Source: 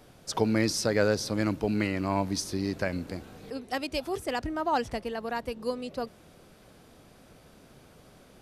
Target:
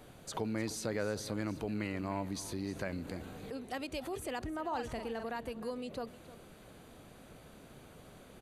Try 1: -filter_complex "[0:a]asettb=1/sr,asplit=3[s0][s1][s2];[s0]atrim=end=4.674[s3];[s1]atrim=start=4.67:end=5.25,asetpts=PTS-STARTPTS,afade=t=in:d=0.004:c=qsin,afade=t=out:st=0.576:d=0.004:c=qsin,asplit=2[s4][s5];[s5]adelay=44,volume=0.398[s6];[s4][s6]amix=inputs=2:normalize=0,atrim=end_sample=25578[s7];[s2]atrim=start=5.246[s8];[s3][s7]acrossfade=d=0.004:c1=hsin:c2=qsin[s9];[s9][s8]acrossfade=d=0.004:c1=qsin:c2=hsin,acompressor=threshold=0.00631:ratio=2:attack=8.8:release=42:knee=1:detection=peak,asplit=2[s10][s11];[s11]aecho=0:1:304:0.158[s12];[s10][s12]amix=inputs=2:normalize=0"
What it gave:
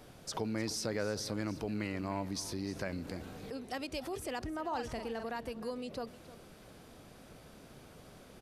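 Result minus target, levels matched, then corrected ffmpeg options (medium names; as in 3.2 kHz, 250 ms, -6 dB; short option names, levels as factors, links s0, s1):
4 kHz band +3.0 dB
-filter_complex "[0:a]asettb=1/sr,asplit=3[s0][s1][s2];[s0]atrim=end=4.674[s3];[s1]atrim=start=4.67:end=5.25,asetpts=PTS-STARTPTS,afade=t=in:d=0.004:c=qsin,afade=t=out:st=0.576:d=0.004:c=qsin,asplit=2[s4][s5];[s5]adelay=44,volume=0.398[s6];[s4][s6]amix=inputs=2:normalize=0,atrim=end_sample=25578[s7];[s2]atrim=start=5.246[s8];[s3][s7]acrossfade=d=0.004:c1=hsin:c2=qsin[s9];[s9][s8]acrossfade=d=0.004:c1=qsin:c2=hsin,acompressor=threshold=0.00631:ratio=2:attack=8.8:release=42:knee=1:detection=peak,equalizer=f=5300:w=7.3:g=-14,asplit=2[s10][s11];[s11]aecho=0:1:304:0.158[s12];[s10][s12]amix=inputs=2:normalize=0"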